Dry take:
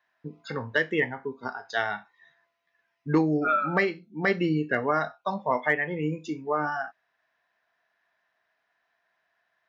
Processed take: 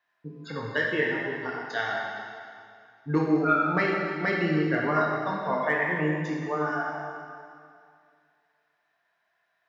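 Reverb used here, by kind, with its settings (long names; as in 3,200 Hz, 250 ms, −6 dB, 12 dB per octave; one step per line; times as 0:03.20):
dense smooth reverb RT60 2.3 s, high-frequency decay 0.95×, DRR −2.5 dB
level −4 dB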